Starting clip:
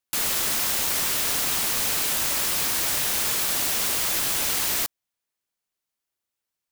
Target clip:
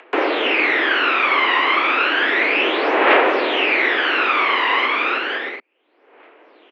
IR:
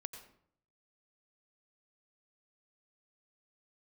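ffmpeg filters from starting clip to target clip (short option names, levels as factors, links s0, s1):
-filter_complex "[0:a]asplit=2[s0][s1];[s1]aecho=0:1:320|512|627.2|696.3|737.8:0.631|0.398|0.251|0.158|0.1[s2];[s0][s2]amix=inputs=2:normalize=0,apsyclip=15,equalizer=f=1200:t=o:w=2.7:g=-5.5,asplit=2[s3][s4];[s4]asoftclip=type=tanh:threshold=0.376,volume=0.562[s5];[s3][s5]amix=inputs=2:normalize=0,aphaser=in_gain=1:out_gain=1:delay=1.1:decay=0.66:speed=0.32:type=triangular,highpass=f=210:t=q:w=0.5412,highpass=f=210:t=q:w=1.307,lowpass=f=2500:t=q:w=0.5176,lowpass=f=2500:t=q:w=0.7071,lowpass=f=2500:t=q:w=1.932,afreqshift=110,acompressor=mode=upward:threshold=0.0708:ratio=2.5,volume=0.531"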